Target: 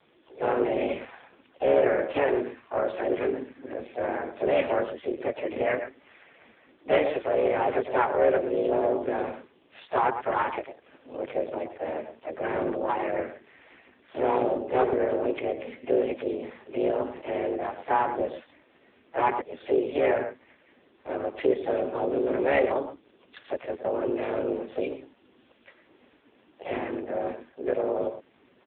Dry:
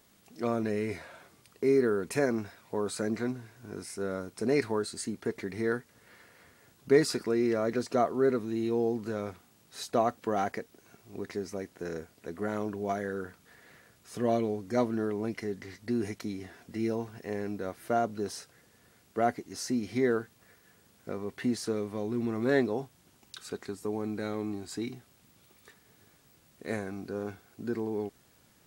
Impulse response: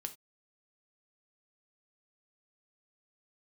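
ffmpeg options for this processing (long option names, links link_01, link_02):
-filter_complex "[0:a]aecho=1:1:113:0.282,acrossover=split=260|960|3100[link_01][link_02][link_03][link_04];[link_02]asoftclip=type=tanh:threshold=-28dB[link_05];[link_01][link_05][link_03][link_04]amix=inputs=4:normalize=0,asplit=4[link_06][link_07][link_08][link_09];[link_07]asetrate=29433,aresample=44100,atempo=1.49831,volume=-13dB[link_10];[link_08]asetrate=52444,aresample=44100,atempo=0.840896,volume=-4dB[link_11];[link_09]asetrate=66075,aresample=44100,atempo=0.66742,volume=-9dB[link_12];[link_06][link_10][link_11][link_12]amix=inputs=4:normalize=0,afreqshift=140,volume=6dB" -ar 8000 -c:a libopencore_amrnb -b:a 5150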